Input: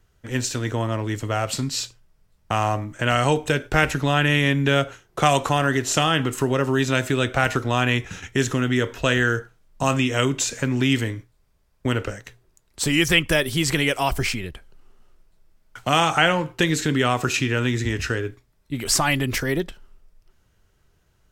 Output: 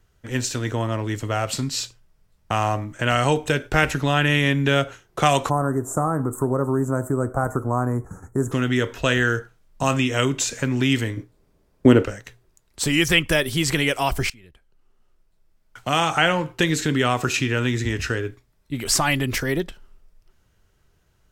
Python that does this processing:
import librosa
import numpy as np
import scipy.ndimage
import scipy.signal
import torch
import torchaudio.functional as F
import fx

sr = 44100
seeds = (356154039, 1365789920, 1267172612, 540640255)

y = fx.cheby1_bandstop(x, sr, low_hz=1200.0, high_hz=8300.0, order=3, at=(5.49, 8.51), fade=0.02)
y = fx.peak_eq(y, sr, hz=320.0, db=13.5, octaves=2.2, at=(11.17, 12.05))
y = fx.edit(y, sr, fx.fade_in_from(start_s=14.3, length_s=2.12, floor_db=-23.0), tone=tone)